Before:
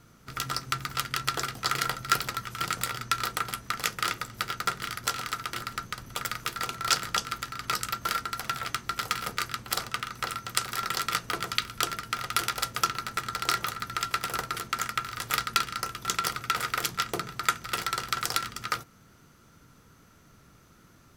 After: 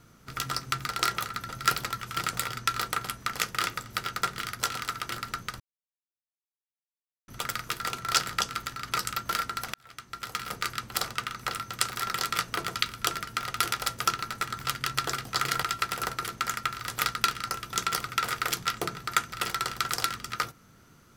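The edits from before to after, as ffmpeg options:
-filter_complex "[0:a]asplit=7[s0][s1][s2][s3][s4][s5][s6];[s0]atrim=end=0.892[s7];[s1]atrim=start=13.348:end=13.952[s8];[s2]atrim=start=1.928:end=6.04,asetpts=PTS-STARTPTS,afade=t=out:st=4.108:d=0.004:c=hsin,apad=pad_dur=1.68[s9];[s3]atrim=start=6.04:end=8.5,asetpts=PTS-STARTPTS,afade=t=in:d=0.004:c=hsin,afade=t=out:st=2.456:d=0.004:c=hsin[s10];[s4]atrim=start=8.5:end=13.352,asetpts=PTS-STARTPTS,afade=t=in:d=0.98[s11];[s5]atrim=start=0.888:end=1.932[s12];[s6]atrim=start=13.948[s13];[s7][s8]acrossfade=d=0.004:c1=hsin:c2=hsin[s14];[s9][s10][s11]concat=n=3:v=0:a=1[s15];[s14][s15]acrossfade=d=0.004:c1=hsin:c2=hsin[s16];[s16][s12]acrossfade=d=0.004:c1=hsin:c2=hsin[s17];[s17][s13]acrossfade=d=0.004:c1=hsin:c2=hsin"

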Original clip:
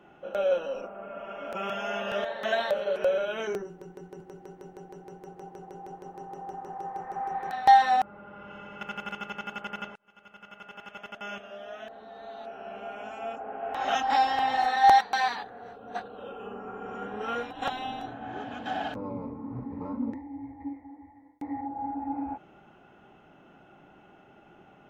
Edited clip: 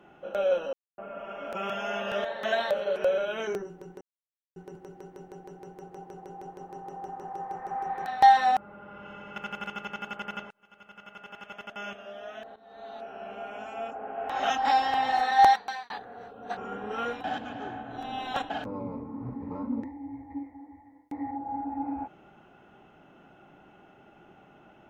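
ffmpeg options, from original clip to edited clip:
-filter_complex "[0:a]asplit=9[s0][s1][s2][s3][s4][s5][s6][s7][s8];[s0]atrim=end=0.73,asetpts=PTS-STARTPTS,afade=t=out:st=0.726:d=0.004:c=hsin[s9];[s1]atrim=start=0.73:end=0.98,asetpts=PTS-STARTPTS,volume=0[s10];[s2]atrim=start=0.98:end=4.01,asetpts=PTS-STARTPTS,afade=t=in:d=0.004:c=hsin,afade=t=out:st=3.026:d=0.004:c=hsin,apad=pad_dur=0.55[s11];[s3]atrim=start=4.01:end=12.01,asetpts=PTS-STARTPTS,afade=t=in:d=0.004:c=hsin,afade=t=out:st=7.996:d=0.004:c=hsin:silence=0.188365[s12];[s4]atrim=start=12.01:end=15.35,asetpts=PTS-STARTPTS,afade=t=in:d=0.33:silence=0.188365,afade=t=out:st=2.88:d=0.46[s13];[s5]atrim=start=15.35:end=16.022,asetpts=PTS-STARTPTS,afade=t=in:d=0.004:c=hsin[s14];[s6]atrim=start=16.868:end=17.542[s15];[s7]atrim=start=17.538:end=18.802,asetpts=PTS-STARTPTS,areverse[s16];[s8]atrim=start=18.798[s17];[s9][s10][s11][s12][s13][s14]concat=n=6:v=0:a=1[s18];[s18][s15]acrossfade=d=0.004:c1=hsin:c2=hsin[s19];[s19][s16]acrossfade=d=0.004:c1=hsin:c2=hsin[s20];[s20][s17]acrossfade=d=0.004:c1=hsin:c2=hsin"

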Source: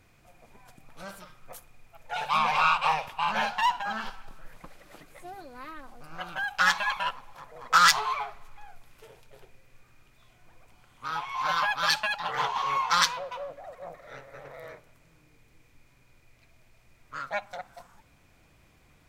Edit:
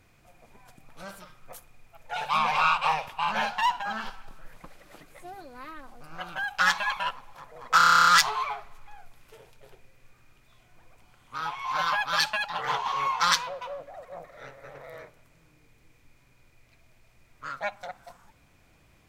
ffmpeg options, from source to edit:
-filter_complex "[0:a]asplit=11[s0][s1][s2][s3][s4][s5][s6][s7][s8][s9][s10];[s0]atrim=end=7.802[s11];[s1]atrim=start=7.768:end=7.802[s12];[s2]atrim=start=7.768:end=7.802[s13];[s3]atrim=start=7.768:end=7.802[s14];[s4]atrim=start=7.768:end=7.802[s15];[s5]atrim=start=7.768:end=7.802[s16];[s6]atrim=start=7.768:end=7.802[s17];[s7]atrim=start=7.768:end=7.802[s18];[s8]atrim=start=7.768:end=7.802[s19];[s9]atrim=start=7.768:end=7.802[s20];[s10]atrim=start=7.768[s21];[s11][s12]acrossfade=d=0.004:c1=hsin:c2=hsin[s22];[s22][s13]acrossfade=d=0.004:c1=hsin:c2=hsin[s23];[s23][s14]acrossfade=d=0.004:c1=hsin:c2=hsin[s24];[s24][s15]acrossfade=d=0.004:c1=hsin:c2=hsin[s25];[s25][s16]acrossfade=d=0.004:c1=hsin:c2=hsin[s26];[s26][s17]acrossfade=d=0.004:c1=hsin:c2=hsin[s27];[s27][s18]acrossfade=d=0.004:c1=hsin:c2=hsin[s28];[s28][s19]acrossfade=d=0.004:c1=hsin:c2=hsin[s29];[s29][s20]acrossfade=d=0.004:c1=hsin:c2=hsin[s30];[s30][s21]acrossfade=d=0.004:c1=hsin:c2=hsin"

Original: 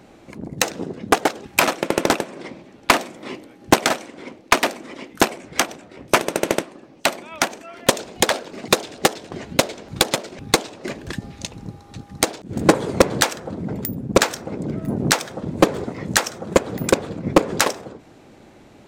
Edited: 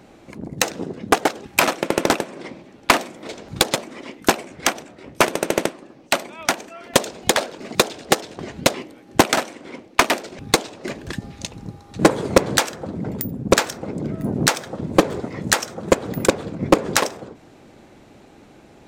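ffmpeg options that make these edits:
-filter_complex "[0:a]asplit=6[s0][s1][s2][s3][s4][s5];[s0]atrim=end=3.272[s6];[s1]atrim=start=9.668:end=10.222[s7];[s2]atrim=start=4.748:end=9.672[s8];[s3]atrim=start=3.268:end=4.752[s9];[s4]atrim=start=10.218:end=11.992[s10];[s5]atrim=start=12.628[s11];[s6][s7]acrossfade=d=0.004:c1=hsin:c2=hsin[s12];[s12][s8]acrossfade=d=0.004:c1=hsin:c2=hsin[s13];[s13][s9]acrossfade=d=0.004:c1=hsin:c2=hsin[s14];[s14][s10]acrossfade=d=0.004:c1=hsin:c2=hsin[s15];[s15][s11]acrossfade=d=0.004:c1=hsin:c2=hsin"

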